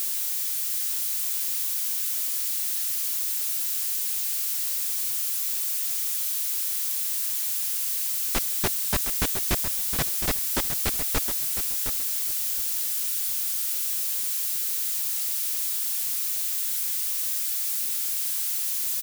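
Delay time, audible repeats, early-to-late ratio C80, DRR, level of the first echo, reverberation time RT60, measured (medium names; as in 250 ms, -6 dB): 713 ms, 2, no reverb, no reverb, -9.0 dB, no reverb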